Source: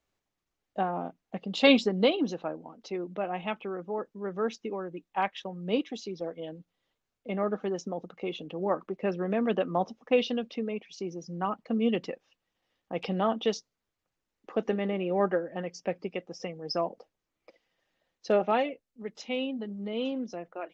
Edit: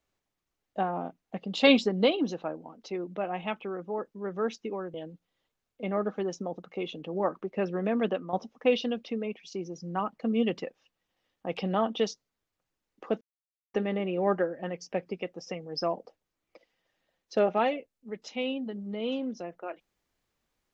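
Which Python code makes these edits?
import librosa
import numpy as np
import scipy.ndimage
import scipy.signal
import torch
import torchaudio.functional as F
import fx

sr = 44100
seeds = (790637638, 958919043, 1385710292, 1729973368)

y = fx.edit(x, sr, fx.cut(start_s=4.94, length_s=1.46),
    fx.fade_out_to(start_s=9.51, length_s=0.28, floor_db=-11.5),
    fx.insert_silence(at_s=14.67, length_s=0.53), tone=tone)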